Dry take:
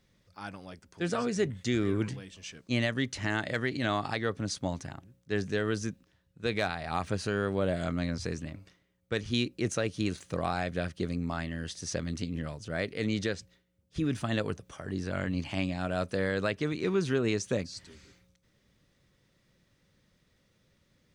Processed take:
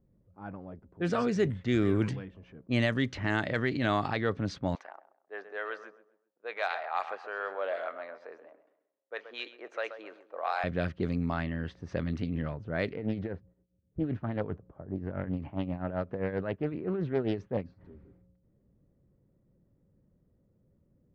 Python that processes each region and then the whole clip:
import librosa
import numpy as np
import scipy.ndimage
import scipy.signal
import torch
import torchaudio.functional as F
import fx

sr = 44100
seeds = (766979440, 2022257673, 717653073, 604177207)

y = fx.chain(x, sr, fx.highpass(hz=590.0, slope=24),
    fx.echo_feedback(ms=131, feedback_pct=38, wet_db=-13), at=(4.75, 10.64))
y = fx.chain(y, sr, fx.lowpass(hz=1100.0, slope=6),
    fx.tremolo(hz=7.6, depth=0.73),
    fx.doppler_dist(depth_ms=0.3), at=(12.96, 17.81))
y = fx.env_lowpass(y, sr, base_hz=470.0, full_db=-24.5)
y = fx.high_shelf(y, sr, hz=4500.0, db=-10.0)
y = fx.transient(y, sr, attack_db=-2, sustain_db=2)
y = F.gain(torch.from_numpy(y), 2.5).numpy()